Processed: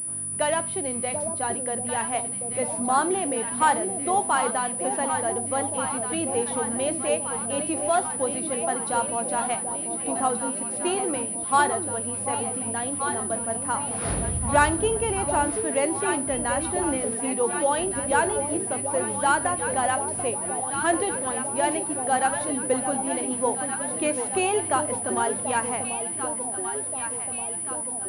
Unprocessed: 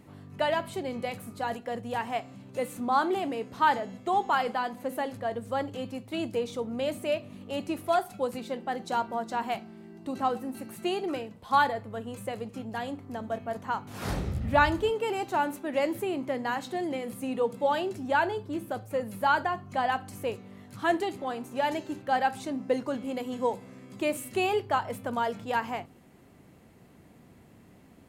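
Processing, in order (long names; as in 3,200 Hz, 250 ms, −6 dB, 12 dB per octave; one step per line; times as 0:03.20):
delay that swaps between a low-pass and a high-pass 738 ms, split 830 Hz, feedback 77%, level −6 dB
switching amplifier with a slow clock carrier 9,800 Hz
level +2.5 dB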